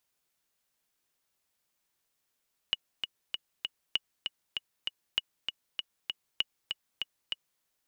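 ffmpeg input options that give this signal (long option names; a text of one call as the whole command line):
ffmpeg -f lavfi -i "aevalsrc='pow(10,(-13.5-5.5*gte(mod(t,4*60/196),60/196))/20)*sin(2*PI*2910*mod(t,60/196))*exp(-6.91*mod(t,60/196)/0.03)':duration=4.89:sample_rate=44100" out.wav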